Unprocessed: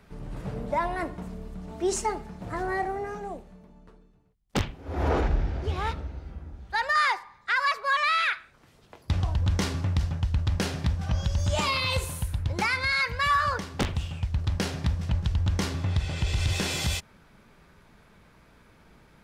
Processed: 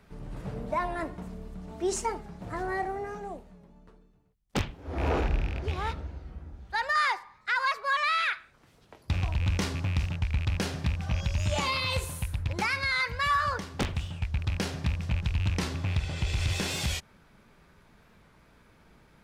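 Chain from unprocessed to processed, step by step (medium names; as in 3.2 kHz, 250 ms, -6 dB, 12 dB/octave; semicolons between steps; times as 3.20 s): rattle on loud lows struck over -26 dBFS, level -25 dBFS; warped record 45 rpm, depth 100 cents; trim -2.5 dB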